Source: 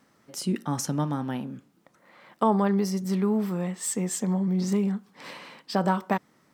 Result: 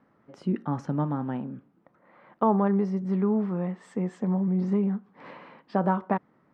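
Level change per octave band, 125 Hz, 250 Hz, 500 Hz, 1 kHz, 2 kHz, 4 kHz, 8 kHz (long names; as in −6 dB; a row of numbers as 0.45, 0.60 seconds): 0.0 dB, 0.0 dB, 0.0 dB, −0.5 dB, −4.5 dB, below −15 dB, below −25 dB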